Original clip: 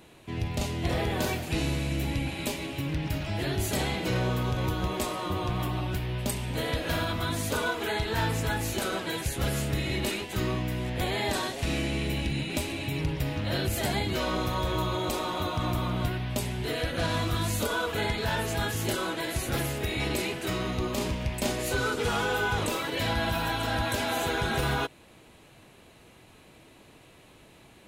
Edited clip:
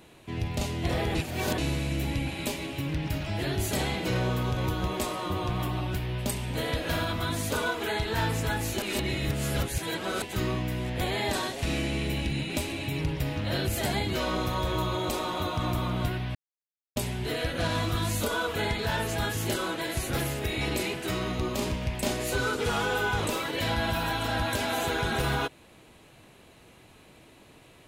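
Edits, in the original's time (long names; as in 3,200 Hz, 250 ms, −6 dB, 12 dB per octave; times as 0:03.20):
0:01.15–0:01.58: reverse
0:08.82–0:10.22: reverse
0:16.35: splice in silence 0.61 s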